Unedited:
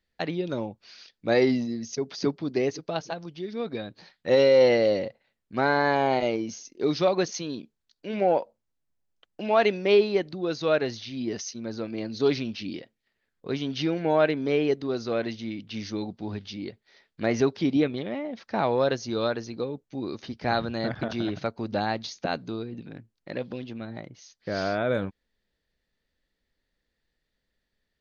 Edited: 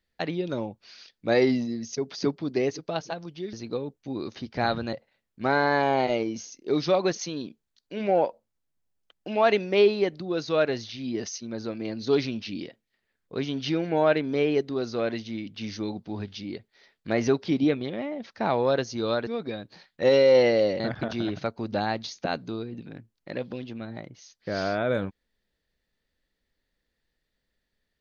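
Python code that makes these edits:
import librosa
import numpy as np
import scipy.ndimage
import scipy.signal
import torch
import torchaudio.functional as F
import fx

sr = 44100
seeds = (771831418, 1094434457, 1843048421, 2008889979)

y = fx.edit(x, sr, fx.swap(start_s=3.53, length_s=1.53, other_s=19.4, other_length_s=1.4), tone=tone)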